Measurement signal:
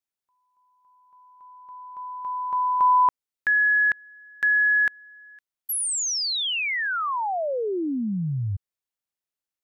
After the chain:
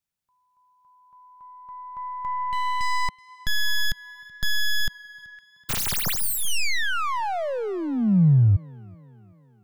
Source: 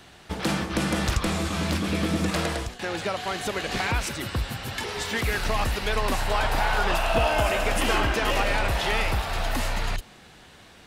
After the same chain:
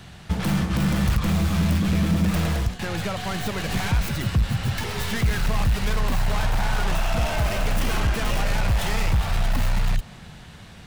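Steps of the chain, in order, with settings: tracing distortion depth 0.29 ms; in parallel at -3 dB: compression 10:1, threshold -29 dBFS; on the sum: overload inside the chain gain 22 dB; resonant low shelf 230 Hz +8.5 dB, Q 1.5; tape echo 378 ms, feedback 60%, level -22 dB, low-pass 5 kHz; trim -2 dB

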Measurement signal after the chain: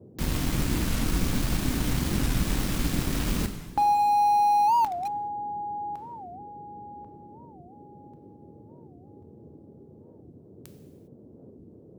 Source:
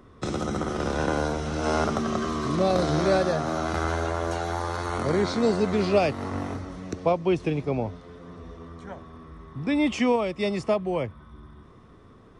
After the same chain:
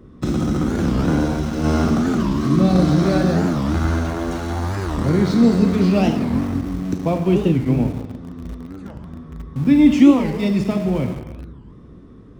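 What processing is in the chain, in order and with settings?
resonant low shelf 360 Hz +9 dB, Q 1.5; gated-style reverb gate 430 ms falling, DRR 3.5 dB; in parallel at -9 dB: small samples zeroed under -24 dBFS; on the sum: band noise 75–430 Hz -47 dBFS; warped record 45 rpm, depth 250 cents; trim -2.5 dB

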